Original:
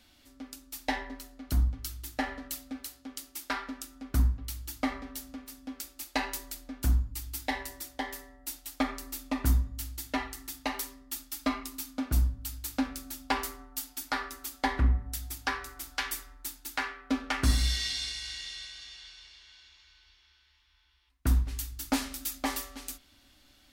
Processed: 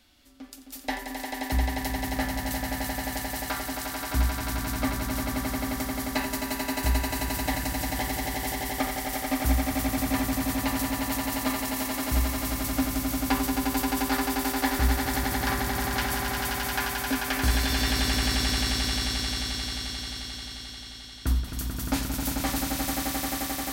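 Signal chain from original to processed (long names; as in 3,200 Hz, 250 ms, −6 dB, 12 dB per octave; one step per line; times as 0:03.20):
echo that builds up and dies away 88 ms, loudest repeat 8, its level −5 dB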